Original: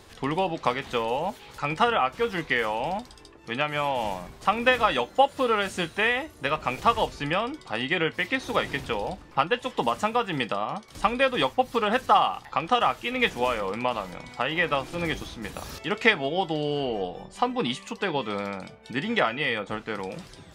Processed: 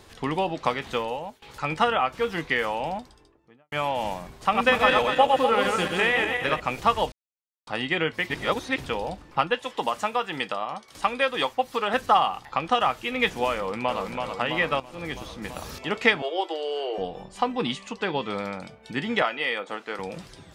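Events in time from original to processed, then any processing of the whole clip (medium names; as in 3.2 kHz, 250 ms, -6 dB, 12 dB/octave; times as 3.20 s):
0.95–1.42 s: fade out, to -18.5 dB
2.72–3.72 s: studio fade out
4.42–6.60 s: backward echo that repeats 122 ms, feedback 58%, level -2.5 dB
7.12–7.67 s: mute
8.30–8.78 s: reverse
9.55–11.94 s: bass shelf 250 Hz -11.5 dB
13.55–14.00 s: echo throw 330 ms, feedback 70%, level -4.5 dB
14.80–15.44 s: fade in, from -14 dB
16.22–16.98 s: Chebyshev high-pass 340 Hz, order 6
17.66–18.30 s: low-pass 8.3 kHz
19.22–19.99 s: high-pass 350 Hz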